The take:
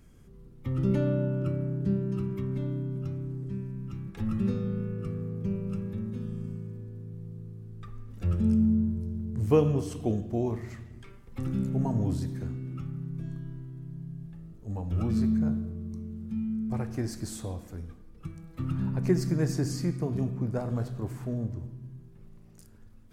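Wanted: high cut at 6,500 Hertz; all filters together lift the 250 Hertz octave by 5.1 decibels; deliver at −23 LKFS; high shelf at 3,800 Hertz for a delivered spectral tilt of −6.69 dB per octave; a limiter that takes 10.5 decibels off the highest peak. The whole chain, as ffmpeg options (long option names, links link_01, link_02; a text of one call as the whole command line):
ffmpeg -i in.wav -af "lowpass=6500,equalizer=frequency=250:width_type=o:gain=6.5,highshelf=frequency=3800:gain=-5.5,volume=6.5dB,alimiter=limit=-12.5dB:level=0:latency=1" out.wav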